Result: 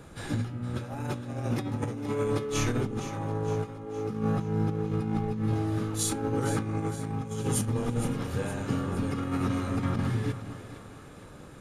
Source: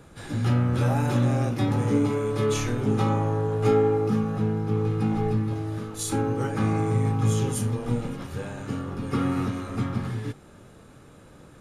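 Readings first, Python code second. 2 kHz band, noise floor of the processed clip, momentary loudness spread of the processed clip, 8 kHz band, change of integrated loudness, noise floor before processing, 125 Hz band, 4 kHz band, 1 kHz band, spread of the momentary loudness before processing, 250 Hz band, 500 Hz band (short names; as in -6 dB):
-3.0 dB, -47 dBFS, 7 LU, +0.5 dB, -5.0 dB, -50 dBFS, -5.5 dB, -2.0 dB, -5.0 dB, 10 LU, -4.5 dB, -6.0 dB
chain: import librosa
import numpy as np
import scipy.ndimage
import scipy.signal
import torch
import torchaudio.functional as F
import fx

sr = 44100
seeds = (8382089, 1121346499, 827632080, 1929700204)

p1 = fx.over_compress(x, sr, threshold_db=-27.0, ratio=-0.5)
p2 = p1 + fx.echo_split(p1, sr, split_hz=430.0, low_ms=216, high_ms=463, feedback_pct=52, wet_db=-11.5, dry=0)
y = F.gain(torch.from_numpy(p2), -2.0).numpy()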